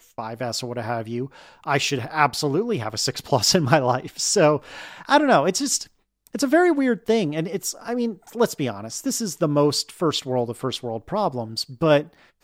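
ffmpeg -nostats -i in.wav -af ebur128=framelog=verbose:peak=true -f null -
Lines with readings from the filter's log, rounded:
Integrated loudness:
  I:         -22.2 LUFS
  Threshold: -32.5 LUFS
Loudness range:
  LRA:         4.0 LU
  Threshold: -42.1 LUFS
  LRA low:   -24.2 LUFS
  LRA high:  -20.2 LUFS
True peak:
  Peak:       -1.7 dBFS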